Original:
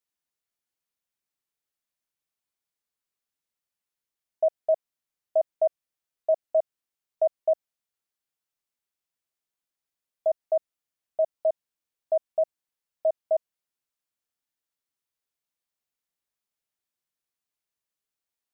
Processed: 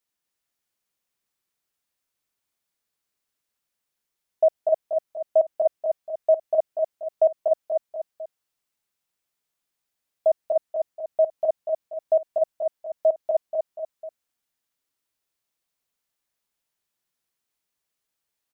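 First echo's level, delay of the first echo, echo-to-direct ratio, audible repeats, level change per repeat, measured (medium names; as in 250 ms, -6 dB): -4.0 dB, 241 ms, -3.0 dB, 3, -7.0 dB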